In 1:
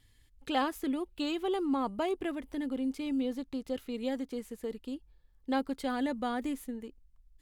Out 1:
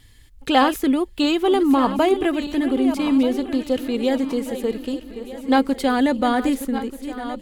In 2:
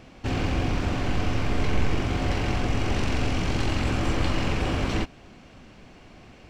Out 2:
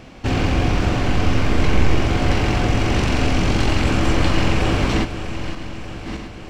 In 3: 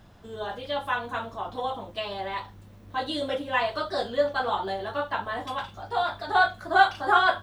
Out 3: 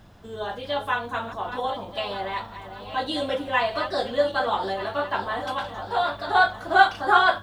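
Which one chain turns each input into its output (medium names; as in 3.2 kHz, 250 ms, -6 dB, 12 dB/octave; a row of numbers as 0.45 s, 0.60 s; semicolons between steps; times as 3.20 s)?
backward echo that repeats 617 ms, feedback 59%, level -11 dB; peak normalisation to -3 dBFS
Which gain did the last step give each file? +13.5 dB, +7.0 dB, +2.5 dB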